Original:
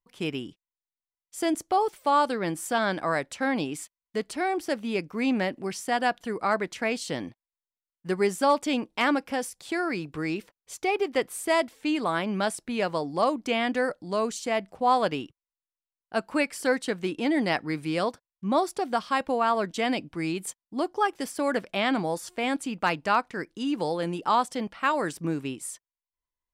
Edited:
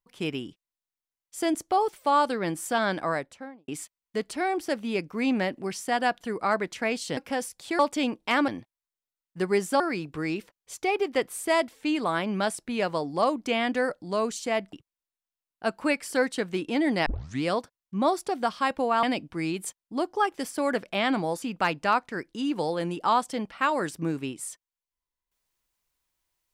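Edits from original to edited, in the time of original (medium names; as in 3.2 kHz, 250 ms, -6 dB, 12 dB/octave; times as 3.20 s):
2.98–3.68 s: studio fade out
7.17–8.49 s: swap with 9.18–9.80 s
14.73–15.23 s: delete
17.56 s: tape start 0.37 s
19.53–19.84 s: delete
22.23–22.64 s: delete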